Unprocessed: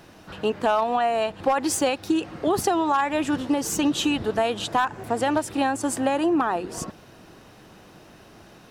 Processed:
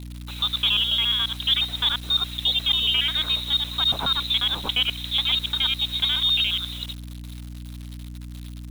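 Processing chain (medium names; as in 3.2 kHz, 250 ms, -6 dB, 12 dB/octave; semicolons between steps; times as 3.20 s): time reversed locally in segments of 70 ms; frequency inversion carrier 4 kHz; bit crusher 7-bit; hum 60 Hz, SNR 11 dB; companded quantiser 8-bit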